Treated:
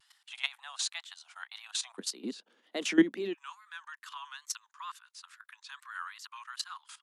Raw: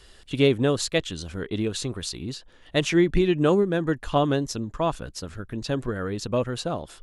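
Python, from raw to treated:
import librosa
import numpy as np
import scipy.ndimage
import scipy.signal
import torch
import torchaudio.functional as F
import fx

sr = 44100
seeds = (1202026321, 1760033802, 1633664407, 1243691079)

y = fx.level_steps(x, sr, step_db=16)
y = fx.steep_highpass(y, sr, hz=fx.steps((0.0, 770.0), (1.97, 200.0), (3.33, 970.0)), slope=72)
y = fx.wow_flutter(y, sr, seeds[0], rate_hz=2.1, depth_cents=100.0)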